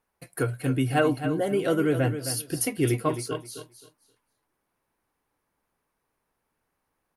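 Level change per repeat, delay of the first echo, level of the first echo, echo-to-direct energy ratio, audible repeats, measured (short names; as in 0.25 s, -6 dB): -13.5 dB, 0.264 s, -10.0 dB, -10.0 dB, 2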